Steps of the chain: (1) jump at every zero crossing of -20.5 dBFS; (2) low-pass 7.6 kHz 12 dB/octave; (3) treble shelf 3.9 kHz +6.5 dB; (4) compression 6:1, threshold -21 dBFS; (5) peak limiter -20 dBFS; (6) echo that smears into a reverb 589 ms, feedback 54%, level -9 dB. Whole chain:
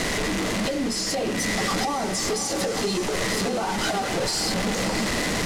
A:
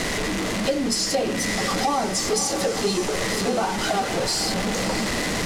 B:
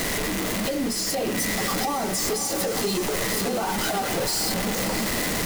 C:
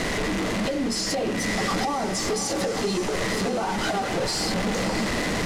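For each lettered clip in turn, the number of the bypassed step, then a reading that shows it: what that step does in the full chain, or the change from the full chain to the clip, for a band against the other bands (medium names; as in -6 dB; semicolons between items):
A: 5, crest factor change +3.5 dB; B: 2, 8 kHz band +2.5 dB; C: 3, 8 kHz band -3.0 dB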